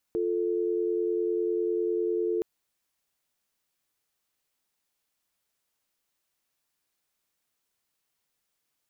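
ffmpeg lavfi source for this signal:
ffmpeg -f lavfi -i "aevalsrc='0.0422*(sin(2*PI*350*t)+sin(2*PI*440*t))':duration=2.27:sample_rate=44100" out.wav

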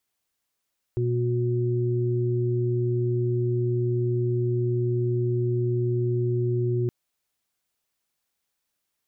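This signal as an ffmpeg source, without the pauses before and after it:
ffmpeg -f lavfi -i "aevalsrc='0.0708*sin(2*PI*121*t)+0.01*sin(2*PI*242*t)+0.0501*sin(2*PI*363*t)':duration=5.92:sample_rate=44100" out.wav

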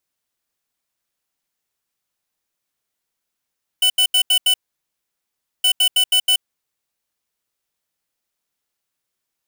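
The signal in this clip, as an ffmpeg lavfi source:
ffmpeg -f lavfi -i "aevalsrc='0.188*(2*lt(mod(2990*t,1),0.5)-1)*clip(min(mod(mod(t,1.82),0.16),0.08-mod(mod(t,1.82),0.16))/0.005,0,1)*lt(mod(t,1.82),0.8)':duration=3.64:sample_rate=44100" out.wav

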